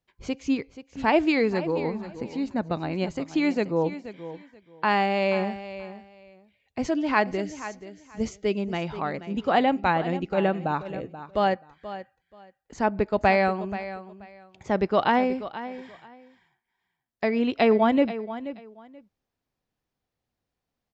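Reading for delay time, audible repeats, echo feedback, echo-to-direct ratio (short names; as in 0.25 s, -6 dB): 0.481 s, 2, 20%, -13.5 dB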